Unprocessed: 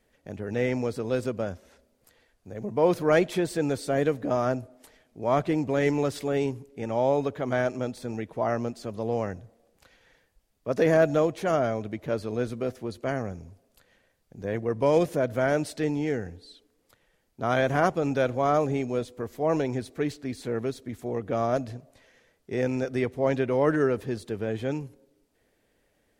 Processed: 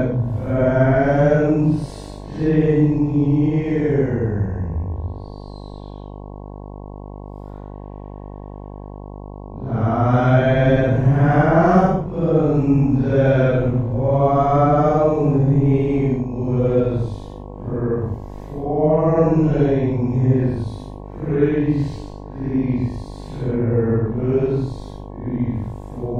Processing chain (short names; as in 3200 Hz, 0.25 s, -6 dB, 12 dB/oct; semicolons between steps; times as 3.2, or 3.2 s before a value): RIAA curve playback; Paulstretch 4.5×, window 0.10 s, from 15.25; buzz 50 Hz, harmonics 22, -38 dBFS -4 dB/oct; gain +4 dB